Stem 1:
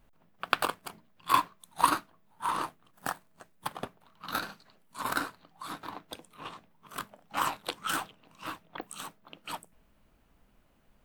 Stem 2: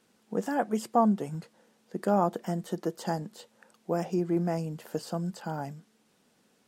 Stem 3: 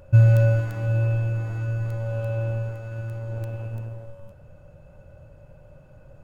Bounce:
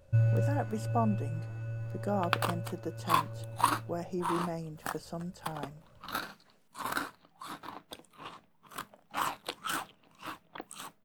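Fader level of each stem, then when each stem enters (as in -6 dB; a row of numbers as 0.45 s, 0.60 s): -3.0 dB, -7.0 dB, -11.5 dB; 1.80 s, 0.00 s, 0.00 s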